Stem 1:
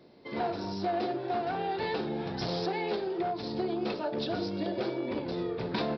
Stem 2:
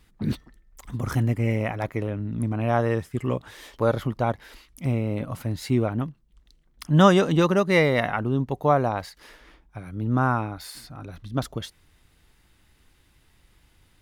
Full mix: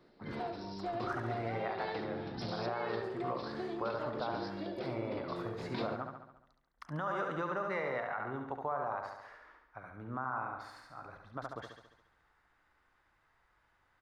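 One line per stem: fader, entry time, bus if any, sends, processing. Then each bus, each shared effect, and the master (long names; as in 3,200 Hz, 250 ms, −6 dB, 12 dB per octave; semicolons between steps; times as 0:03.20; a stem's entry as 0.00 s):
−8.0 dB, 0.00 s, no send, echo send −19 dB, no processing
−4.5 dB, 0.00 s, no send, echo send −6 dB, three-way crossover with the lows and the highs turned down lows −16 dB, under 550 Hz, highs −17 dB, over 6,600 Hz; downward compressor 2 to 1, threshold −31 dBFS, peak gain reduction 10 dB; high shelf with overshoot 2,100 Hz −11.5 dB, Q 1.5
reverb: not used
echo: repeating echo 70 ms, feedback 58%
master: brickwall limiter −26 dBFS, peak gain reduction 8.5 dB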